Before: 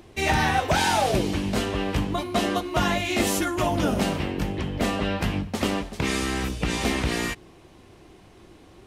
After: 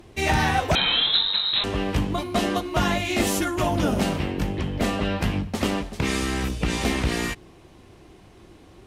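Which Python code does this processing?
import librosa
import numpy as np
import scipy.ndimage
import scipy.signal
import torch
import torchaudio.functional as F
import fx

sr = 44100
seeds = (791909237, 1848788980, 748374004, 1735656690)

y = fx.cheby_harmonics(x, sr, harmonics=(6,), levels_db=(-30,), full_scale_db=-9.5)
y = fx.low_shelf(y, sr, hz=170.0, db=3.0)
y = fx.freq_invert(y, sr, carrier_hz=4000, at=(0.75, 1.64))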